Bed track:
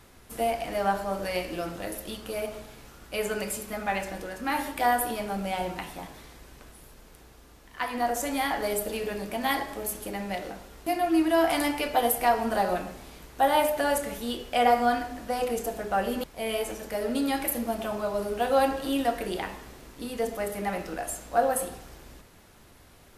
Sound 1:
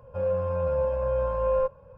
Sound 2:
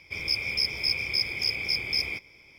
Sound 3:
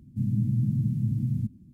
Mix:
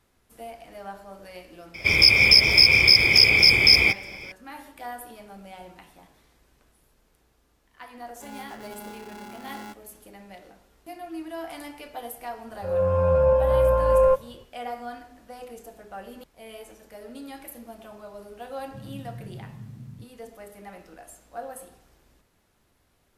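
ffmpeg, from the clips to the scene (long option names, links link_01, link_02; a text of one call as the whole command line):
ffmpeg -i bed.wav -i cue0.wav -i cue1.wav -i cue2.wav -filter_complex "[1:a]asplit=2[link_01][link_02];[0:a]volume=-13dB[link_03];[2:a]alimiter=level_in=18dB:limit=-1dB:release=50:level=0:latency=1[link_04];[link_01]aeval=exprs='val(0)*sgn(sin(2*PI*310*n/s))':channel_layout=same[link_05];[link_02]dynaudnorm=framelen=120:gausssize=5:maxgain=13dB[link_06];[link_04]atrim=end=2.58,asetpts=PTS-STARTPTS,volume=-3.5dB,afade=type=in:duration=0.004:curve=hsin,afade=type=out:start_time=2.576:duration=0.004:curve=hsin,adelay=1740[link_07];[link_05]atrim=end=1.97,asetpts=PTS-STARTPTS,volume=-16.5dB,afade=type=in:duration=0.004:curve=hsin,afade=type=out:start_time=1.966:duration=0.004:curve=hsin,adelay=8060[link_08];[link_06]atrim=end=1.97,asetpts=PTS-STARTPTS,volume=-6dB,afade=type=in:duration=0.004:curve=hsin,afade=type=out:start_time=1.966:duration=0.004:curve=hsin,adelay=12480[link_09];[3:a]atrim=end=1.73,asetpts=PTS-STARTPTS,volume=-15dB,afade=type=in:duration=0.004:curve=hsin,afade=type=out:start_time=1.726:duration=0.004:curve=hsin,adelay=18570[link_10];[link_03][link_07][link_08][link_09][link_10]amix=inputs=5:normalize=0" out.wav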